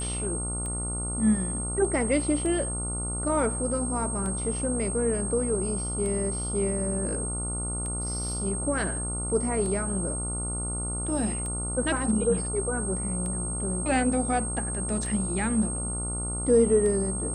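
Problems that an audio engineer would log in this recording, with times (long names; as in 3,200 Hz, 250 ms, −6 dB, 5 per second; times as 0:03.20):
mains buzz 60 Hz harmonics 24 −33 dBFS
scratch tick 33 1/3 rpm −24 dBFS
whistle 8,500 Hz −32 dBFS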